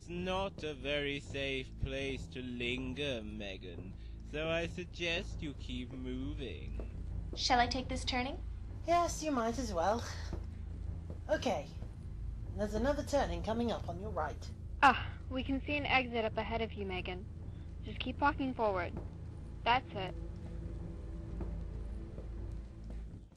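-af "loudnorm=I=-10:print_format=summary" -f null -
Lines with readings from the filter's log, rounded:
Input Integrated:    -37.5 LUFS
Input True Peak:     -12.6 dBTP
Input LRA:            11.8 LU
Input Threshold:     -47.8 LUFS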